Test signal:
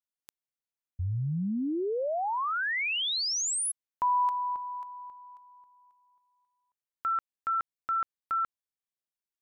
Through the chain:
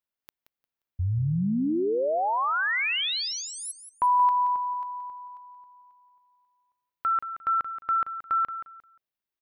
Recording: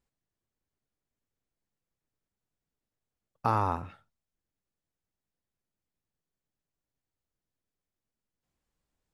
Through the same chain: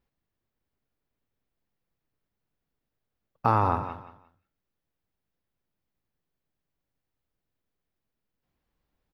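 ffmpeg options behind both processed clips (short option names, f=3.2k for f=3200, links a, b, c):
-af "equalizer=f=8k:t=o:w=1:g=-14.5,aecho=1:1:176|352|528:0.282|0.0705|0.0176,volume=4.5dB"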